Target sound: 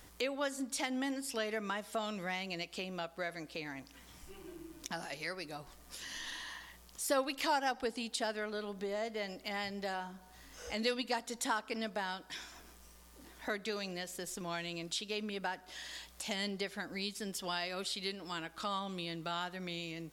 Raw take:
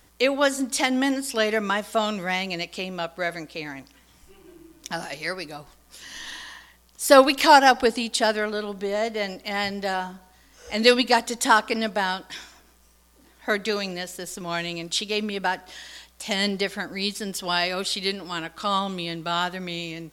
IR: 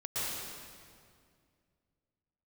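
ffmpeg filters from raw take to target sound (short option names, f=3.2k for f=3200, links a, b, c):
-af "acompressor=threshold=-46dB:ratio=2"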